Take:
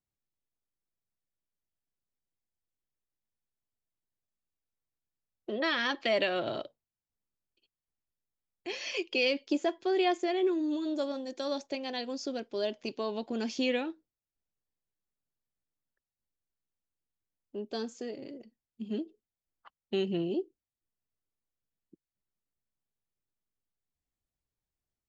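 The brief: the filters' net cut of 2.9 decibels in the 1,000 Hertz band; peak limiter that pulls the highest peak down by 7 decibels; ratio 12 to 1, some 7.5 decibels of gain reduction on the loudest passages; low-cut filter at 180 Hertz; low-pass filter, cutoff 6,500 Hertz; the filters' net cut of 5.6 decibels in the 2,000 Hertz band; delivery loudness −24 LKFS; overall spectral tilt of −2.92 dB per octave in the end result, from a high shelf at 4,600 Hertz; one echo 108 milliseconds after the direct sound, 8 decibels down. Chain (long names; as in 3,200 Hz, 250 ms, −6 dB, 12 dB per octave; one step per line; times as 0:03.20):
high-pass filter 180 Hz
low-pass filter 6,500 Hz
parametric band 1,000 Hz −3.5 dB
parametric band 2,000 Hz −7.5 dB
high-shelf EQ 4,600 Hz +5 dB
downward compressor 12 to 1, threshold −32 dBFS
brickwall limiter −29.5 dBFS
single-tap delay 108 ms −8 dB
level +15 dB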